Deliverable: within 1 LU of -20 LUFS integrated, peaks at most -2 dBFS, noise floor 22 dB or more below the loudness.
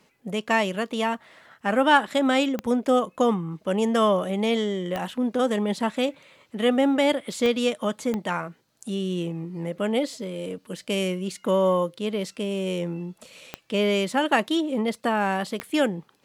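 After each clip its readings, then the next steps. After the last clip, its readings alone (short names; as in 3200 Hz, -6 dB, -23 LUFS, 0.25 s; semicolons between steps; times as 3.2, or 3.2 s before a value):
clicks 6; loudness -25.0 LUFS; peak -5.5 dBFS; loudness target -20.0 LUFS
-> de-click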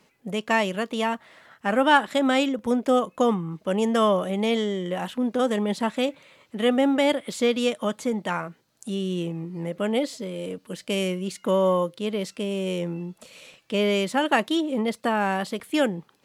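clicks 0; loudness -25.0 LUFS; peak -5.5 dBFS; loudness target -20.0 LUFS
-> gain +5 dB; limiter -2 dBFS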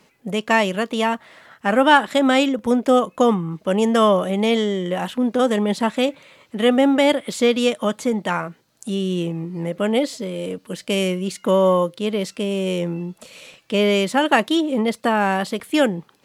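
loudness -20.0 LUFS; peak -2.0 dBFS; noise floor -59 dBFS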